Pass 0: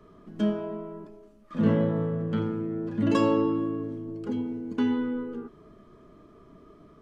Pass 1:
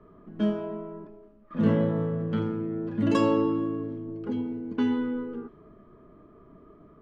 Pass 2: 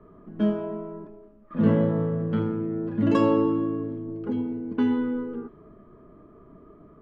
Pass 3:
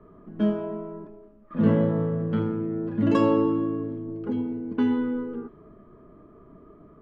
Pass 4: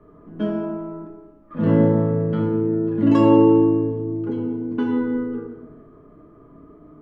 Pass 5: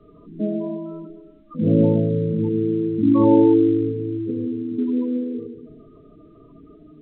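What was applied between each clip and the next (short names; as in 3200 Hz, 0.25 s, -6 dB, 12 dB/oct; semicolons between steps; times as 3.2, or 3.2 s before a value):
low-pass opened by the level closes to 1700 Hz, open at -20 dBFS
high shelf 3600 Hz -11 dB; gain +2.5 dB
nothing audible
FDN reverb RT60 1.1 s, low-frequency decay 1.1×, high-frequency decay 0.5×, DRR 1.5 dB
spectral gate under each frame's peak -15 dB strong; A-law 64 kbps 8000 Hz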